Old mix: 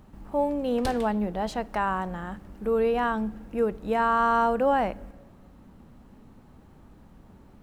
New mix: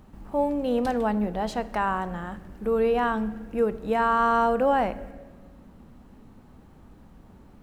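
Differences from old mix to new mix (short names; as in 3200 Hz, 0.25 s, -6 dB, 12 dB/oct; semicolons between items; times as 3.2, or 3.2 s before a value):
speech: send +9.0 dB; background -7.5 dB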